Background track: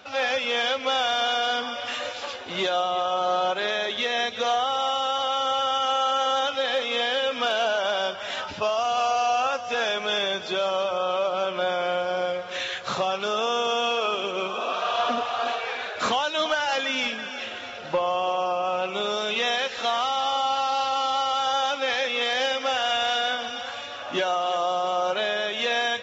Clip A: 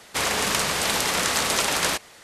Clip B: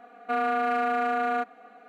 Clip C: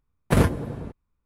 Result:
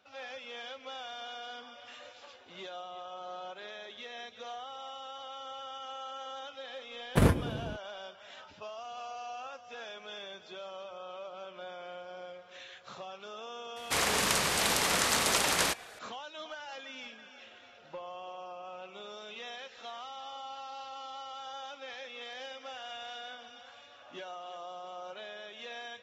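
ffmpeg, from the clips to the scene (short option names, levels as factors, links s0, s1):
-filter_complex "[0:a]volume=0.112[s0];[3:a]atrim=end=1.25,asetpts=PTS-STARTPTS,volume=0.562,afade=t=in:d=0.004:c=hsin,afade=t=out:st=1.246:d=0.004:c=hsin,adelay=6850[s1];[1:a]atrim=end=2.23,asetpts=PTS-STARTPTS,volume=0.562,afade=t=in:d=0.004:c=hsin,afade=t=out:st=2.226:d=0.004:c=hsin,adelay=13760[s2];[s0][s1][s2]amix=inputs=3:normalize=0"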